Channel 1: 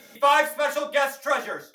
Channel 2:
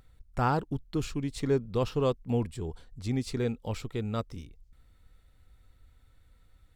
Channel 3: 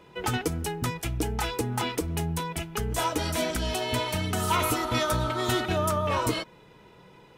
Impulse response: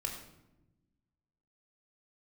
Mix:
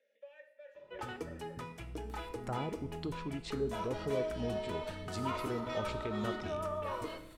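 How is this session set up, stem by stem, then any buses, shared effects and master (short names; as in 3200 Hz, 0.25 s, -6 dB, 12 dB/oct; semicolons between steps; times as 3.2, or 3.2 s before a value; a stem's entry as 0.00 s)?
-9.5 dB, 0.00 s, send -8.5 dB, compressor 3:1, threshold -28 dBFS, peak gain reduction 10.5 dB; vowel filter e
+1.5 dB, 2.10 s, no send, treble ducked by the level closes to 520 Hz, closed at -24 dBFS; high shelf 7900 Hz +8 dB; fast leveller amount 50%
-4.0 dB, 0.75 s, send -4.5 dB, LPF 1700 Hz 6 dB/oct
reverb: on, pre-delay 3 ms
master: low shelf 160 Hz -9.5 dB; resonator 210 Hz, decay 0.92 s, mix 70%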